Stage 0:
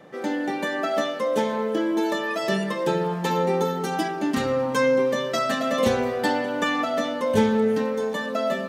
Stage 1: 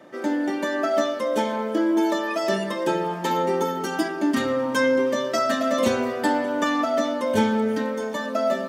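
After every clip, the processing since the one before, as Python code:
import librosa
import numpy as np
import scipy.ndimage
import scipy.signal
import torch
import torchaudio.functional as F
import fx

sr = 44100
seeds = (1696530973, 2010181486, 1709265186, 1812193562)

y = scipy.signal.sosfilt(scipy.signal.butter(2, 110.0, 'highpass', fs=sr, output='sos'), x)
y = fx.notch(y, sr, hz=4000.0, q=20.0)
y = y + 0.52 * np.pad(y, (int(3.2 * sr / 1000.0), 0))[:len(y)]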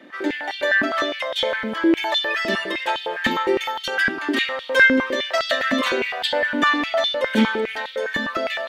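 y = np.minimum(x, 2.0 * 10.0 ** (-13.5 / 20.0) - x)
y = fx.band_shelf(y, sr, hz=2600.0, db=11.0, octaves=1.7)
y = fx.filter_held_highpass(y, sr, hz=9.8, low_hz=240.0, high_hz=3500.0)
y = F.gain(torch.from_numpy(y), -4.0).numpy()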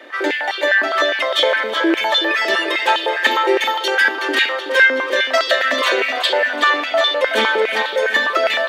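y = scipy.signal.sosfilt(scipy.signal.butter(4, 390.0, 'highpass', fs=sr, output='sos'), x)
y = fx.rider(y, sr, range_db=4, speed_s=0.5)
y = fx.echo_feedback(y, sr, ms=373, feedback_pct=50, wet_db=-10.0)
y = F.gain(torch.from_numpy(y), 5.0).numpy()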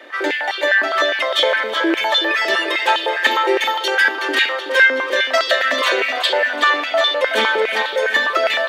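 y = fx.low_shelf(x, sr, hz=180.0, db=-8.0)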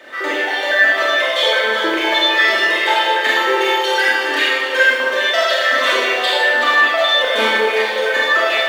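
y = fx.law_mismatch(x, sr, coded='mu')
y = fx.rev_schroeder(y, sr, rt60_s=1.2, comb_ms=25, drr_db=-5.5)
y = F.gain(torch.from_numpy(y), -5.0).numpy()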